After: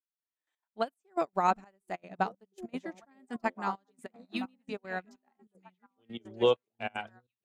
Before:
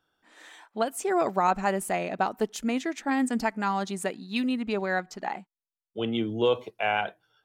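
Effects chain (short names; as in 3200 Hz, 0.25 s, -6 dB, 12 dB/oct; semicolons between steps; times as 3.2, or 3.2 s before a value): delay with a stepping band-pass 0.735 s, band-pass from 150 Hz, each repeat 1.4 oct, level -1 dB; step gate "xxx...x.x" 192 bpm -12 dB; upward expander 2.5:1, over -44 dBFS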